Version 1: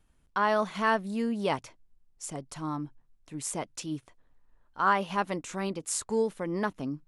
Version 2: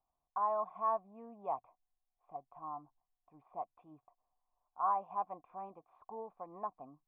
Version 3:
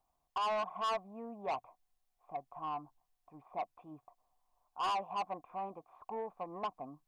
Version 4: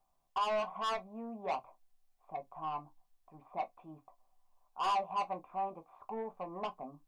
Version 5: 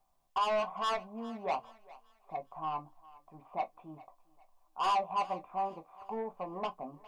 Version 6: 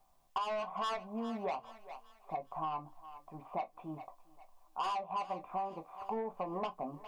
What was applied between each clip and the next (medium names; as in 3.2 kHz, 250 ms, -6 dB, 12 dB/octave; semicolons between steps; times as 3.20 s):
cascade formant filter a; trim +2.5 dB
saturation -37.5 dBFS, distortion -7 dB; trim +6.5 dB
reverberation RT60 0.15 s, pre-delay 5 ms, DRR 6 dB
thinning echo 407 ms, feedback 40%, high-pass 530 Hz, level -19 dB; trim +2.5 dB
compression 8:1, threshold -39 dBFS, peak gain reduction 13 dB; trim +5 dB